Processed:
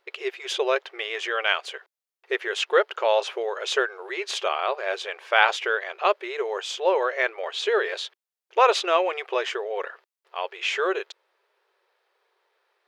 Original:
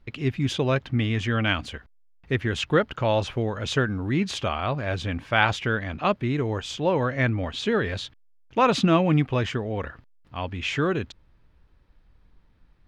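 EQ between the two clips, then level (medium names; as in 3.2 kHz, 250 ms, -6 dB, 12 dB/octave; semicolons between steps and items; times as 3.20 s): brick-wall FIR high-pass 360 Hz; +2.5 dB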